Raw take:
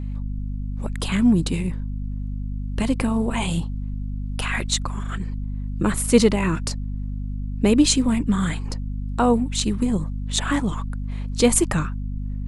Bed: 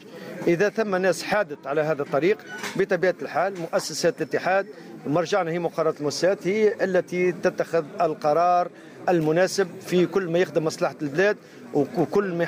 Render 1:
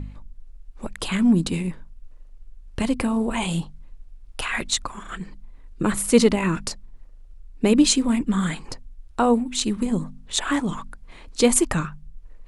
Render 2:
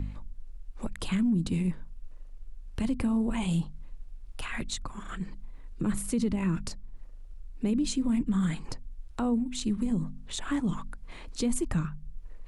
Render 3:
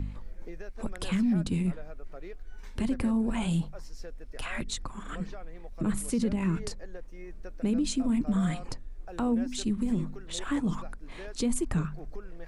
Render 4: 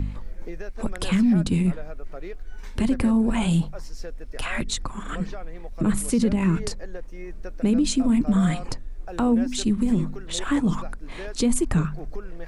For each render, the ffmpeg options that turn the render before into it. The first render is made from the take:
-af "bandreject=f=50:t=h:w=4,bandreject=f=100:t=h:w=4,bandreject=f=150:t=h:w=4,bandreject=f=200:t=h:w=4,bandreject=f=250:t=h:w=4"
-filter_complex "[0:a]acrossover=split=250[a][b];[b]acompressor=threshold=-44dB:ratio=2[c];[a][c]amix=inputs=2:normalize=0,alimiter=limit=-20dB:level=0:latency=1:release=69"
-filter_complex "[1:a]volume=-24.5dB[a];[0:a][a]amix=inputs=2:normalize=0"
-af "volume=7dB"

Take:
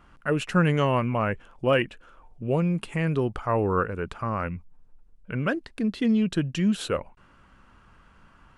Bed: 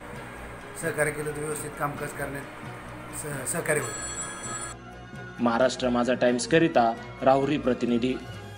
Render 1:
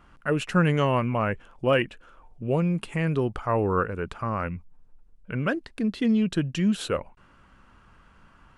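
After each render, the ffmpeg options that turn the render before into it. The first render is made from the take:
-af anull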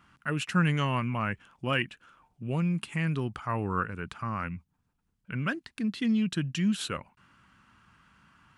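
-af "highpass=110,equalizer=f=510:w=0.93:g=-13"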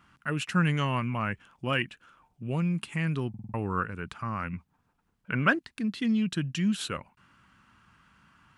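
-filter_complex "[0:a]asettb=1/sr,asplit=3[a][b][c];[a]atrim=end=4.534[d];[b]atrim=start=4.53:end=5.59,asetpts=PTS-STARTPTS,afade=t=in:d=0.004:c=qsin,afade=t=out:st=1.056:d=0.004:c=qsin,equalizer=f=890:w=0.31:g=10[e];[c]atrim=start=5.586[f];[d][e]acrossfade=d=0.004:c1=hsin:c2=qsin[g];[g][f]acrossfade=d=0.004:c1=qsin:c2=hsin,asplit=6[h][i][j][k][l][m];[h]atrim=end=3.342[n];[i]atrim=start=3.288:end=3.342[o];[j]atrim=start=3.288:end=3.342[p];[k]atrim=start=3.288:end=3.342[q];[l]atrim=start=3.288:end=3.342[r];[m]atrim=start=3.538[s];[n][o]acrossfade=d=0.004:c1=hsin:c2=hsin[t];[t][p]acrossfade=d=0.004:c1=hsin:c2=hsin[u];[u][q]acrossfade=d=0.004:c1=hsin:c2=hsin[v];[v][r]acrossfade=d=0.004:c1=hsin:c2=hsin[w];[w][s]acrossfade=d=0.004:c1=hsin:c2=hsin"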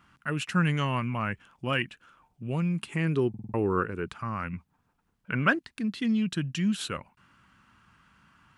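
-filter_complex "[0:a]asettb=1/sr,asplit=3[a][b][c];[a]atrim=end=2.894[d];[b]atrim=start=2.89:end=4.08,asetpts=PTS-STARTPTS,afade=t=in:d=0.004:c=qsin,afade=t=out:st=1.186:d=0.004:c=qsin,equalizer=f=380:w=1.8:g=11[e];[c]atrim=start=4.076[f];[d][e]acrossfade=d=0.004:c1=hsin:c2=qsin[g];[g][f]acrossfade=d=0.004:c1=qsin:c2=hsin"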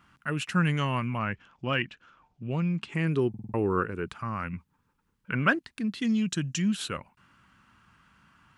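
-filter_complex "[0:a]asettb=1/sr,asplit=3[a][b][c];[a]atrim=end=1.194[d];[b]atrim=start=1.19:end=2.95,asetpts=PTS-STARTPTS,afade=t=in:d=0.004:c=qsin,afade=t=out:st=1.756:d=0.004:c=qsin,lowpass=f=6.4k:w=0.5412,lowpass=f=6.4k:w=1.3066[e];[c]atrim=start=2.946[f];[d][e]acrossfade=d=0.004:c1=hsin:c2=qsin[g];[g][f]acrossfade=d=0.004:c1=qsin:c2=hsin,asettb=1/sr,asplit=3[h][i][j];[h]atrim=end=4.564[k];[i]atrim=start=4.56:end=5.34,asetpts=PTS-STARTPTS,afade=t=in:d=0.004:c=qsin,afade=t=out:st=0.776:d=0.004:c=qsin,asuperstop=centerf=690:order=4:qfactor=3.1[l];[j]atrim=start=5.336[m];[k][l]acrossfade=d=0.004:c1=hsin:c2=qsin[n];[n][m]acrossfade=d=0.004:c1=qsin:c2=hsin,asettb=1/sr,asplit=3[o][p][q];[o]atrim=end=6.014[r];[p]atrim=start=6.01:end=6.62,asetpts=PTS-STARTPTS,afade=t=in:d=0.004:c=qsin,afade=t=out:st=0.606:d=0.004:c=qsin,equalizer=f=6.6k:t=o:w=0.57:g=11.5[s];[q]atrim=start=6.616[t];[r][s]acrossfade=d=0.004:c1=hsin:c2=qsin[u];[u][t]acrossfade=d=0.004:c1=qsin:c2=hsin"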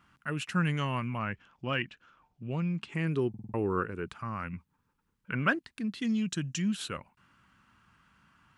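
-af "volume=-3.5dB"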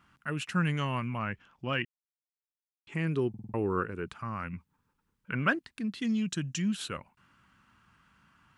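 -filter_complex "[0:a]asplit=3[a][b][c];[a]atrim=end=1.85,asetpts=PTS-STARTPTS,afade=t=out:st=1.846:d=0.004:c=hsin[d];[b]atrim=start=1.85:end=2.87,asetpts=PTS-STARTPTS,volume=0[e];[c]atrim=start=2.87,asetpts=PTS-STARTPTS,afade=t=in:d=0.004:c=hsin[f];[d][e][f]concat=n=3:v=0:a=1"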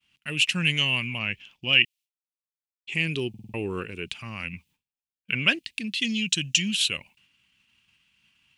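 -af "agate=range=-33dB:threshold=-56dB:ratio=3:detection=peak,highshelf=f=1.9k:t=q:w=3:g=12"

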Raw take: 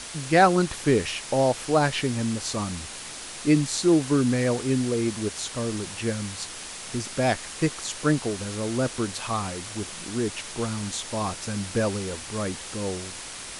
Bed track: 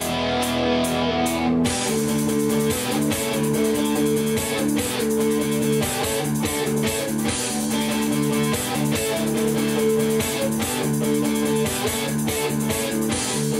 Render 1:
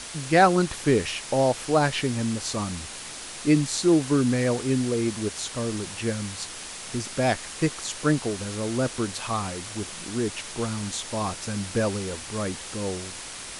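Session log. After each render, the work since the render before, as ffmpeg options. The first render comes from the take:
-af anull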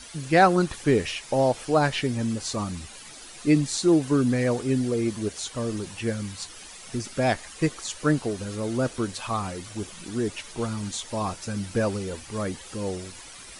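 -af "afftdn=nr=11:nf=-39"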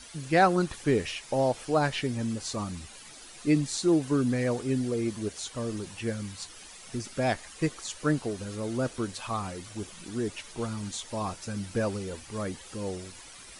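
-af "volume=-4dB"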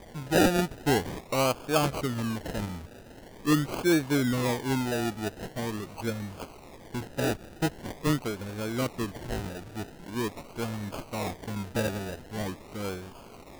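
-af "acrusher=samples=32:mix=1:aa=0.000001:lfo=1:lforange=19.2:lforate=0.44"

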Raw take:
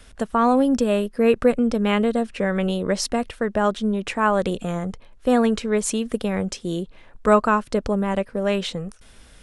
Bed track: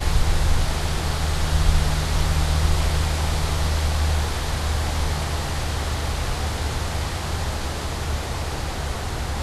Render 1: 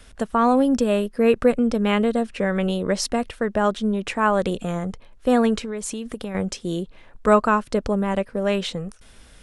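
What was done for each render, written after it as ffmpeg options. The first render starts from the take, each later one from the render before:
-filter_complex "[0:a]asettb=1/sr,asplit=3[a][b][c];[a]atrim=end=5.594[d];[b]atrim=start=5.59:end=6.35,asetpts=PTS-STARTPTS,afade=t=in:d=0.004:c=qsin,afade=t=out:st=0.756:d=0.004:c=qsin,acompressor=threshold=-26dB:ratio=5:attack=3.2:release=140:knee=1:detection=peak[e];[c]atrim=start=6.346[f];[d][e]acrossfade=d=0.004:c1=hsin:c2=qsin[g];[g][f]acrossfade=d=0.004:c1=qsin:c2=hsin"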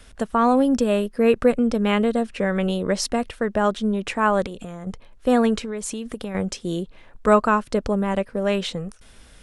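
-filter_complex "[0:a]asettb=1/sr,asplit=3[a][b][c];[a]atrim=end=4.464[d];[b]atrim=start=4.46:end=4.87,asetpts=PTS-STARTPTS,afade=t=in:d=0.004:c=qsin,afade=t=out:st=0.406:d=0.004:c=qsin,acompressor=threshold=-30dB:ratio=6:attack=3.2:release=140:knee=1:detection=peak[e];[c]atrim=start=4.866[f];[d][e]acrossfade=d=0.004:c1=hsin:c2=qsin[g];[g][f]acrossfade=d=0.004:c1=qsin:c2=hsin"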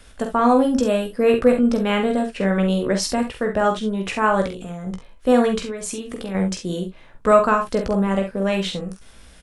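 -filter_complex "[0:a]asplit=2[a][b];[b]adelay=16,volume=-8dB[c];[a][c]amix=inputs=2:normalize=0,aecho=1:1:46|68:0.473|0.266"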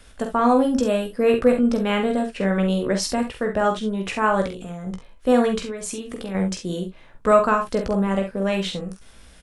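-af "volume=-1.5dB"

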